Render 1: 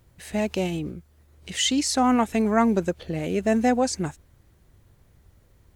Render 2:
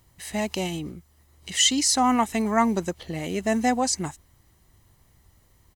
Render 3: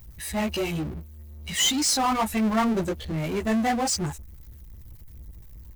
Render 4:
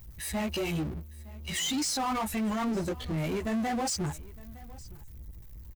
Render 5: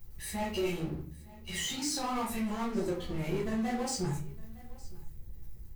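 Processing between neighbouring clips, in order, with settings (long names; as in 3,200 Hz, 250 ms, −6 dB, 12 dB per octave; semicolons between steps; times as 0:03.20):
bass and treble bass −6 dB, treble +5 dB; comb filter 1 ms, depth 43%
spectral dynamics exaggerated over time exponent 1.5; multi-voice chorus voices 6, 1.5 Hz, delay 16 ms, depth 3 ms; power curve on the samples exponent 0.5; level −3.5 dB
brickwall limiter −23.5 dBFS, peak gain reduction 9 dB; single-tap delay 911 ms −21.5 dB; level −2 dB
rectangular room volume 36 cubic metres, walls mixed, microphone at 0.91 metres; level −8.5 dB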